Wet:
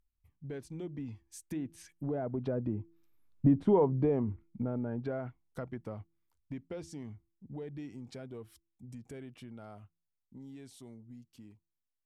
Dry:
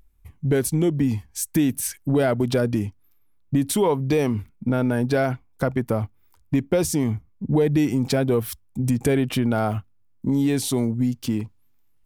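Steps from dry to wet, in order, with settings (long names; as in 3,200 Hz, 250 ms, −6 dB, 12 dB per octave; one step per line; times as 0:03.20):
source passing by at 0:03.55, 9 m/s, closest 3.7 metres
hum removal 167 Hz, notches 2
treble cut that deepens with the level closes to 900 Hz, closed at −27 dBFS
level −3.5 dB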